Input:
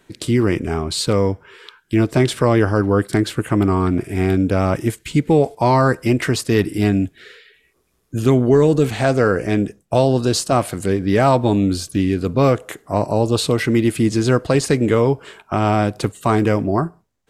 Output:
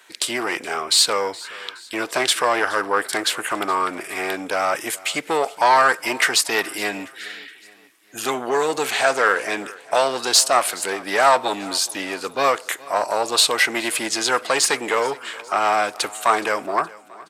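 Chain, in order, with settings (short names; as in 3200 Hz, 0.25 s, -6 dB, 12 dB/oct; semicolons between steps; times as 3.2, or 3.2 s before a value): one diode to ground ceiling -10.5 dBFS; HPF 940 Hz 12 dB/oct; feedback echo 0.42 s, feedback 48%, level -21 dB; gain +8.5 dB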